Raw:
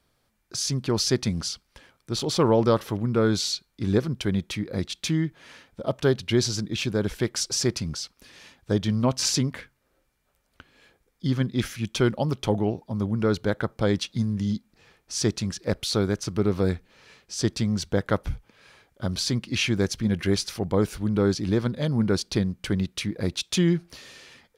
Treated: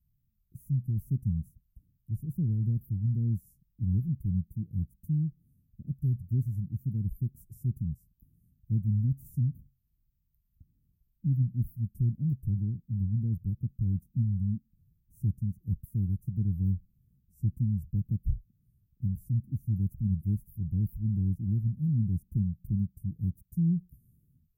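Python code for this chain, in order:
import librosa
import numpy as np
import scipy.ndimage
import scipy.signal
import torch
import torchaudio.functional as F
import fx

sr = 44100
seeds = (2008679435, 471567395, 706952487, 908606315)

y = scipy.signal.sosfilt(scipy.signal.cheby2(4, 80, [810.0, 4400.0], 'bandstop', fs=sr, output='sos'), x)
y = fx.wow_flutter(y, sr, seeds[0], rate_hz=2.1, depth_cents=94.0)
y = F.gain(torch.from_numpy(y), 1.0).numpy()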